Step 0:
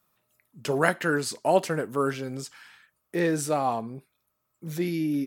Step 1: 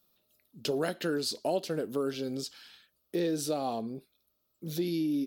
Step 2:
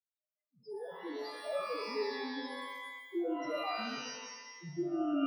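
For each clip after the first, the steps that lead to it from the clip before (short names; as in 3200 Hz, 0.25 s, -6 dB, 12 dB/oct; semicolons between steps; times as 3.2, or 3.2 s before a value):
ten-band EQ 125 Hz -10 dB, 1000 Hz -11 dB, 2000 Hz -12 dB, 4000 Hz +8 dB, 8000 Hz -9 dB; compressor 3:1, threshold -32 dBFS, peak gain reduction 10 dB; gain +3.5 dB
opening faded in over 1.65 s; loudest bins only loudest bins 1; shimmer reverb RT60 1.1 s, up +12 st, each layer -2 dB, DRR 2.5 dB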